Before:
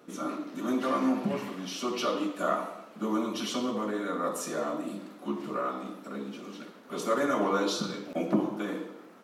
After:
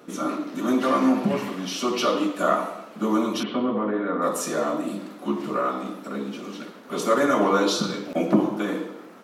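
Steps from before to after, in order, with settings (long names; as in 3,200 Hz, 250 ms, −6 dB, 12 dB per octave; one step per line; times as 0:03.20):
0:03.43–0:04.22: Gaussian smoothing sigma 3.3 samples
level +7 dB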